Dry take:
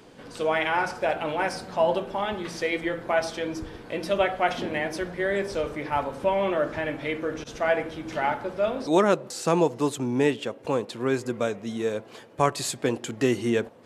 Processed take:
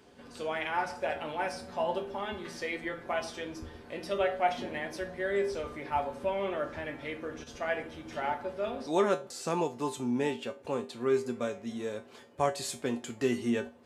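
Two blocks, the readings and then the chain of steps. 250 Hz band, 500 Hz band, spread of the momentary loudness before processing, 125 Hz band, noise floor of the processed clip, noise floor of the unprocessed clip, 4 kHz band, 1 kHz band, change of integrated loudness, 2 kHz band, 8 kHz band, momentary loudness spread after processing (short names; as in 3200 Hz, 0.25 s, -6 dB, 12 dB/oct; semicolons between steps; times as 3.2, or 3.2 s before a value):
-7.0 dB, -7.0 dB, 7 LU, -9.5 dB, -53 dBFS, -48 dBFS, -7.0 dB, -6.0 dB, -7.0 dB, -7.5 dB, -7.0 dB, 9 LU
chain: resonator 80 Hz, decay 0.25 s, harmonics odd, mix 80%; gain +1.5 dB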